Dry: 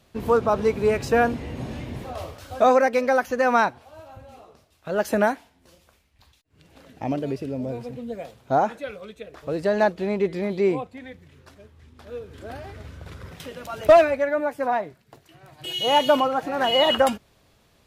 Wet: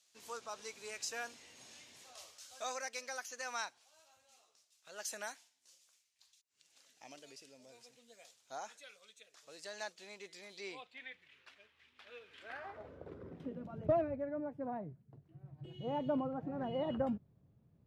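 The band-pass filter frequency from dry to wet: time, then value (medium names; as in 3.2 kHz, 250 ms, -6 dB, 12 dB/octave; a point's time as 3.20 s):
band-pass filter, Q 1.9
10.50 s 6.7 kHz
11.05 s 2.6 kHz
12.43 s 2.6 kHz
12.90 s 520 Hz
13.92 s 140 Hz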